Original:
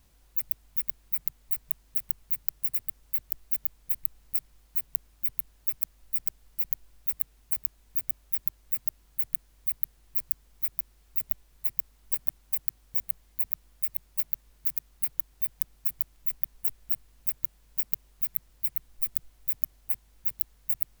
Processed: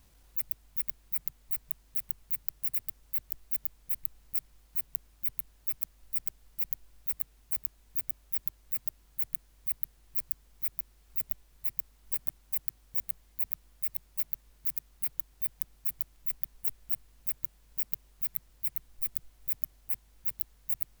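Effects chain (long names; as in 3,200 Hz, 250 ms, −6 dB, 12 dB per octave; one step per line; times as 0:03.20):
transient designer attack −7 dB, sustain −3 dB
level +2 dB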